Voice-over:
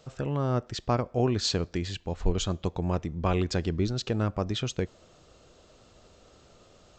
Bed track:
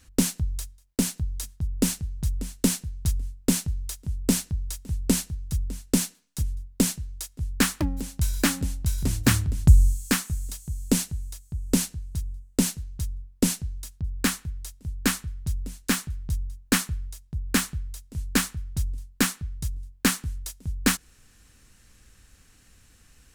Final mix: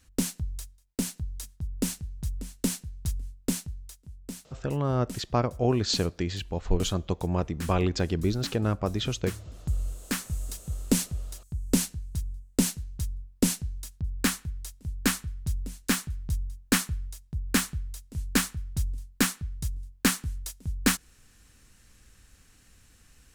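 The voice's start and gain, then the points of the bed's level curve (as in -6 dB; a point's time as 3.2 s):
4.45 s, +1.0 dB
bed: 3.46 s -5.5 dB
4.27 s -17.5 dB
9.57 s -17.5 dB
10.41 s -1.5 dB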